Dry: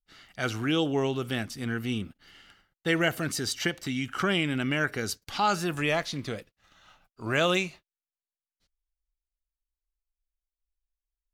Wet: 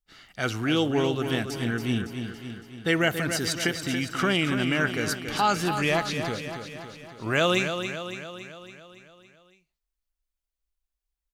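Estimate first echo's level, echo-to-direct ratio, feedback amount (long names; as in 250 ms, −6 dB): −8.0 dB, −6.0 dB, 58%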